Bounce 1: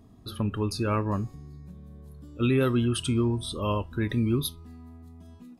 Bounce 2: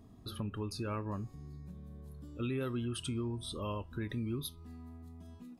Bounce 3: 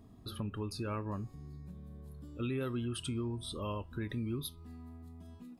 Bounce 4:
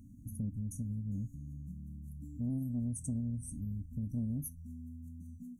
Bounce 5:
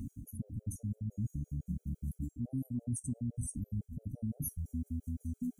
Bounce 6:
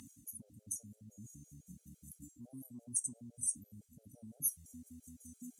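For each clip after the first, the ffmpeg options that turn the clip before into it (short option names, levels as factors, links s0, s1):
-af "acompressor=threshold=0.0126:ratio=2,volume=0.708"
-af "equalizer=f=6100:w=4.7:g=-3.5"
-af "afftfilt=real='re*(1-between(b*sr/4096,300,5700))':imag='im*(1-between(b*sr/4096,300,5700))':win_size=4096:overlap=0.75,asoftclip=type=tanh:threshold=0.0355,volume=1.41"
-af "areverse,acompressor=threshold=0.00501:ratio=10,areverse,afftfilt=real='re*gt(sin(2*PI*5.9*pts/sr)*(1-2*mod(floor(b*sr/1024/430),2)),0)':imag='im*gt(sin(2*PI*5.9*pts/sr)*(1-2*mod(floor(b*sr/1024/430),2)),0)':win_size=1024:overlap=0.75,volume=5.01"
-af "bandpass=f=5400:t=q:w=0.63:csg=0,volume=3.35"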